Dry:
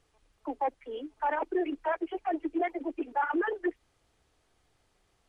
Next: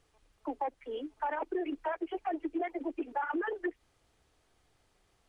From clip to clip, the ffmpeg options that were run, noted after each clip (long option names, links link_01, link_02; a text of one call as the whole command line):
ffmpeg -i in.wav -af "acompressor=threshold=-30dB:ratio=6" out.wav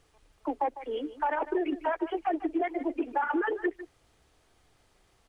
ffmpeg -i in.wav -filter_complex "[0:a]asplit=2[link_01][link_02];[link_02]adelay=151.6,volume=-14dB,highshelf=frequency=4000:gain=-3.41[link_03];[link_01][link_03]amix=inputs=2:normalize=0,volume=5dB" out.wav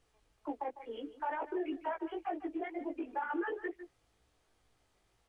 ffmpeg -i in.wav -af "flanger=delay=17:depth=2.3:speed=2.1,volume=-5dB" out.wav